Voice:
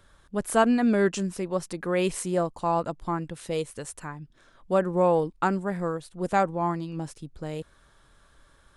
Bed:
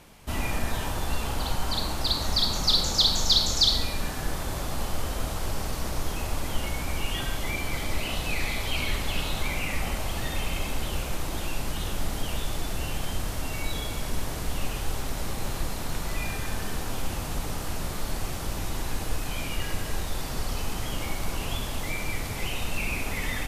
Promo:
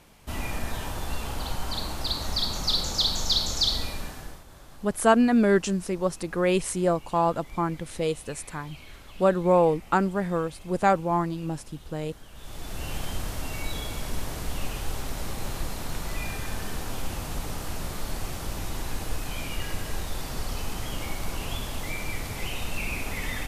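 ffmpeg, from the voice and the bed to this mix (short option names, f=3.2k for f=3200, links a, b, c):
-filter_complex "[0:a]adelay=4500,volume=2dB[a];[1:a]volume=14dB,afade=t=out:st=3.87:d=0.57:silence=0.16788,afade=t=in:st=12.34:d=0.61:silence=0.141254[b];[a][b]amix=inputs=2:normalize=0"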